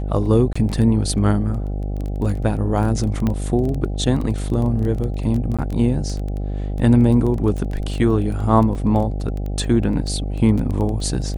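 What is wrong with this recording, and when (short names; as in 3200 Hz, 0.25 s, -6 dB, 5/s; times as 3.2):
buzz 50 Hz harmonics 16 -24 dBFS
crackle 11/s -24 dBFS
0.53–0.56 gap 25 ms
3.27 pop -10 dBFS
5.57–5.59 gap 16 ms
8.75 gap 3 ms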